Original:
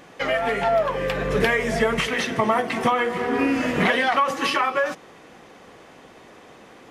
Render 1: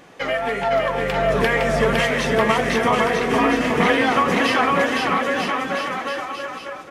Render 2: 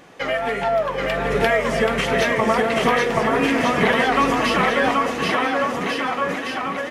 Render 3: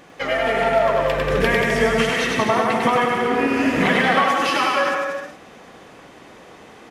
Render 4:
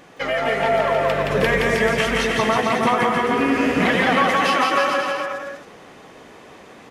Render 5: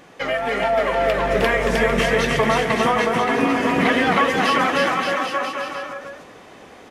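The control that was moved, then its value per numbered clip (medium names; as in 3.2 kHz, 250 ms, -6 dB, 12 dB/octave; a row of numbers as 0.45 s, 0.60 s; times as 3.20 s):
bouncing-ball echo, first gap: 510 ms, 780 ms, 100 ms, 170 ms, 310 ms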